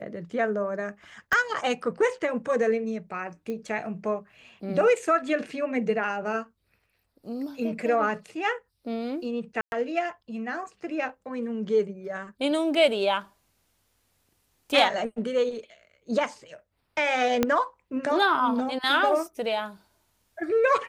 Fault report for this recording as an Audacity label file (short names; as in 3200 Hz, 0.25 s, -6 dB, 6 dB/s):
1.330000	1.330000	pop -12 dBFS
3.500000	3.500000	pop -23 dBFS
9.610000	9.720000	gap 0.111 s
17.430000	17.430000	pop -8 dBFS